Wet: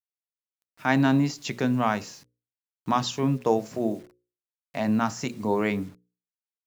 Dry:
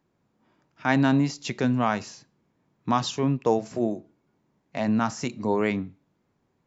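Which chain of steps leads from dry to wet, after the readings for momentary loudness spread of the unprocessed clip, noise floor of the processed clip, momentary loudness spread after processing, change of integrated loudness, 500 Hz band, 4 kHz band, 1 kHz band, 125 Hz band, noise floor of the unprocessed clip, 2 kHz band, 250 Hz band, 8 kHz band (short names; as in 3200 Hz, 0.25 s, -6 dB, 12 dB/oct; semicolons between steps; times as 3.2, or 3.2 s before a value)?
13 LU, under -85 dBFS, 13 LU, -0.5 dB, -0.5 dB, 0.0 dB, 0.0 dB, -0.5 dB, -73 dBFS, 0.0 dB, -0.5 dB, n/a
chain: bit-crush 9-bit; notches 60/120/180/240/300/360/420/480/540 Hz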